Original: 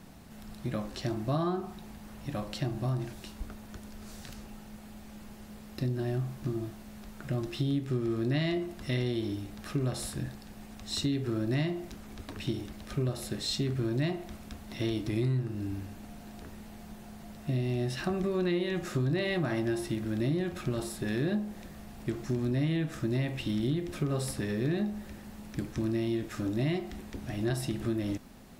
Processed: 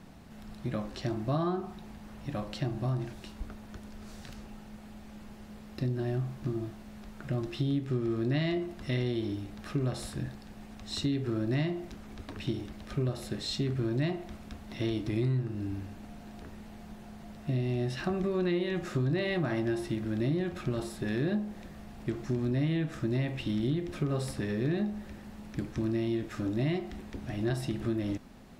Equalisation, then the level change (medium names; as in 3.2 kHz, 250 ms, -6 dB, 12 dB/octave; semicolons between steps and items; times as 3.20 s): treble shelf 7.2 kHz -10 dB; 0.0 dB